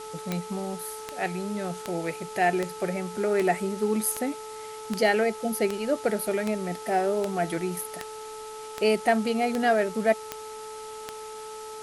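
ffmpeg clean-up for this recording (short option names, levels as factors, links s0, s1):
-af "adeclick=t=4,bandreject=f=434.1:t=h:w=4,bandreject=f=868.2:t=h:w=4,bandreject=f=1302.3:t=h:w=4,afwtdn=0.0056"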